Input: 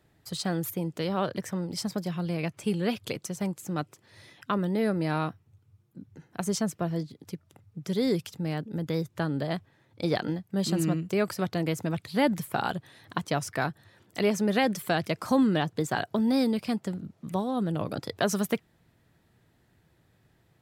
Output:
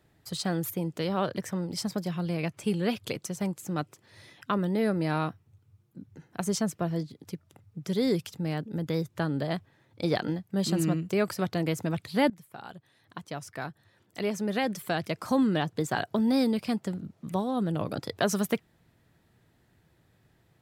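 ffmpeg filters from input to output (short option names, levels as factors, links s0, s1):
-filter_complex "[0:a]asplit=2[s0][s1];[s0]atrim=end=12.3,asetpts=PTS-STARTPTS,afade=t=out:st=12.296:d=0.004:c=hsin:silence=0.105925[s2];[s1]atrim=start=12.3,asetpts=PTS-STARTPTS,afade=t=in:d=3.83:silence=0.105925[s3];[s2][s3]concat=n=2:v=0:a=1"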